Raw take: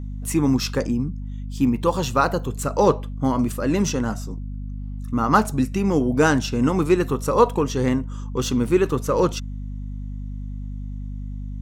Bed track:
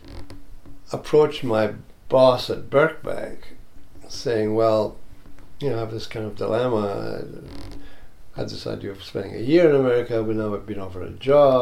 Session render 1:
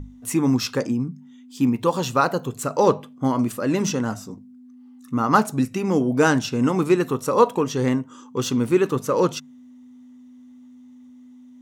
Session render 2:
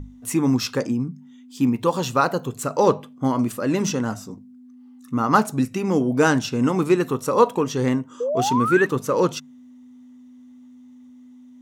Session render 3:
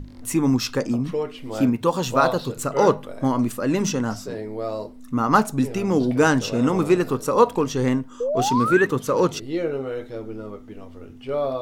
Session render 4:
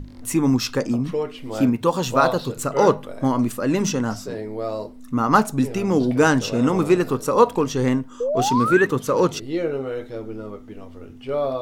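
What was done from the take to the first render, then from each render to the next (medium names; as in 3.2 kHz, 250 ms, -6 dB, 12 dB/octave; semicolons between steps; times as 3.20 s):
hum notches 50/100/150/200 Hz
8.20–8.86 s: painted sound rise 460–1900 Hz -23 dBFS
add bed track -10 dB
trim +1 dB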